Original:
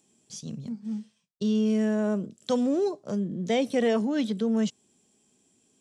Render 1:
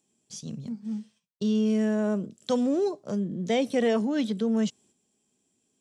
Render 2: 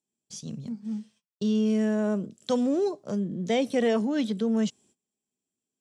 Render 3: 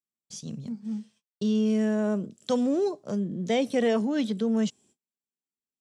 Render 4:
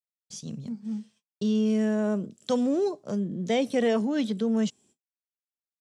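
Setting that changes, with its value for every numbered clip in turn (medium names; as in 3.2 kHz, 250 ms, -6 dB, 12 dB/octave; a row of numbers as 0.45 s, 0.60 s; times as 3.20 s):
gate, range: -7 dB, -22 dB, -36 dB, -53 dB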